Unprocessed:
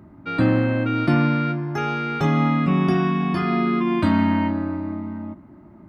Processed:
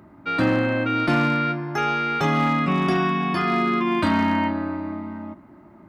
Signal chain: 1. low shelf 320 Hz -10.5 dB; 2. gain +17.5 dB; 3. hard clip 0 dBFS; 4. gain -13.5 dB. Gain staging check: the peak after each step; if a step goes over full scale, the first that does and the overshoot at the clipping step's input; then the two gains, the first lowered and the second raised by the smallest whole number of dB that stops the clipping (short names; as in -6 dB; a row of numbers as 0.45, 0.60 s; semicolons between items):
-11.5, +6.0, 0.0, -13.5 dBFS; step 2, 6.0 dB; step 2 +11.5 dB, step 4 -7.5 dB